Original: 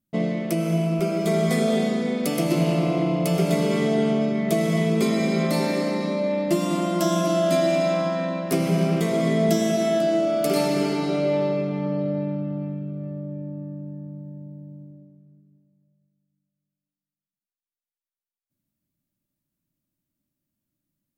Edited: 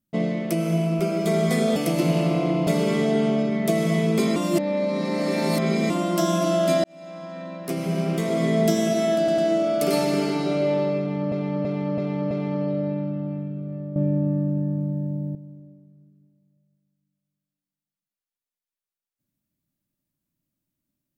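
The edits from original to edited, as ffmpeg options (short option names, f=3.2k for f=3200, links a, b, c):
-filter_complex "[0:a]asplit=14[a][b][c][d][e][f][g][h][i][j][k][l][m][n];[a]atrim=end=1.762[o];[b]atrim=start=2.278:end=3.192[p];[c]atrim=start=3.498:end=5.192[q];[d]atrim=start=5.188:end=6.732,asetpts=PTS-STARTPTS,areverse[r];[e]atrim=start=6.728:end=7.67,asetpts=PTS-STARTPTS,afade=t=out:st=0.938:d=0.004:c=hsin[s];[f]atrim=start=7.67:end=10.112,asetpts=PTS-STARTPTS,afade=t=in:d=1.7[t];[g]atrim=start=10.008:end=10.112[u];[h]atrim=start=10.008:end=11.952[v];[i]atrim=start=11.618:end=11.952[w];[j]atrim=start=11.618:end=11.952[x];[k]atrim=start=11.618:end=11.952[y];[l]atrim=start=11.618:end=13.272[z];[m]atrim=start=13.268:end=14.662,asetpts=PTS-STARTPTS,volume=11dB[aa];[n]atrim=start=14.658[ab];[o][p]acrossfade=d=0.004:c1=hsin:c2=hsin[ac];[ac][q]acrossfade=d=0.004:c1=hsin:c2=hsin[ad];[ad][r]acrossfade=d=0.004:c1=hsin:c2=hsin[ae];[s][t]concat=n=2:v=0:a=1[af];[ae][af]acrossfade=d=0.004:c1=hsin:c2=hsin[ag];[ag][u]acrossfade=d=0.004:c1=hsin:c2=hsin[ah];[ah][v]acrossfade=d=0.004:c1=hsin:c2=hsin[ai];[ai][w]acrossfade=d=0.004:c1=hsin:c2=hsin[aj];[aj][x]acrossfade=d=0.004:c1=hsin:c2=hsin[ak];[ak][y]acrossfade=d=0.004:c1=hsin:c2=hsin[al];[al][z]acrossfade=d=0.004:c1=hsin:c2=hsin[am];[am][aa]acrossfade=d=0.004:c1=hsin:c2=hsin[an];[an][ab]acrossfade=d=0.004:c1=hsin:c2=hsin"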